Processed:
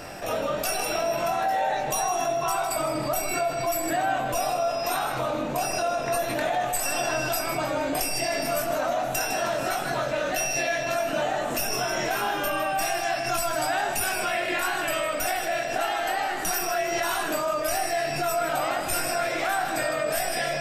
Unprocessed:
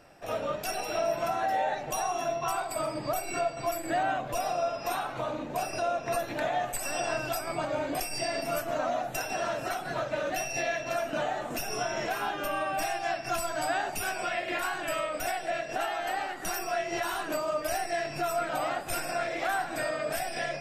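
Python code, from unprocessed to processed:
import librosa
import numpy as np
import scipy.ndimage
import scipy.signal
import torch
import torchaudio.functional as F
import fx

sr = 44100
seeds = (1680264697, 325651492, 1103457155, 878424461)

y = fx.high_shelf(x, sr, hz=4600.0, db=5.5)
y = fx.doubler(y, sr, ms=22.0, db=-6.5)
y = fx.echo_feedback(y, sr, ms=157, feedback_pct=37, wet_db=-11.5)
y = fx.env_flatten(y, sr, amount_pct=50)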